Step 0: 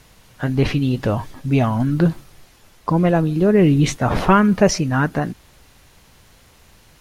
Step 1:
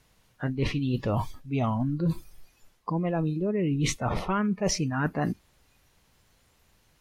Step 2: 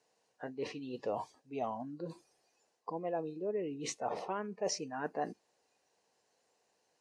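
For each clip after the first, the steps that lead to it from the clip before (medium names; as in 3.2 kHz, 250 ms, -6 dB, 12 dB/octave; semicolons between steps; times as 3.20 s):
reverse; compression 16:1, threshold -23 dBFS, peak gain reduction 15.5 dB; reverse; spectral noise reduction 14 dB
cabinet simulation 380–8500 Hz, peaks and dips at 460 Hz +7 dB, 740 Hz +5 dB, 1.3 kHz -9 dB, 2.2 kHz -7 dB, 3.4 kHz -9 dB; trim -7.5 dB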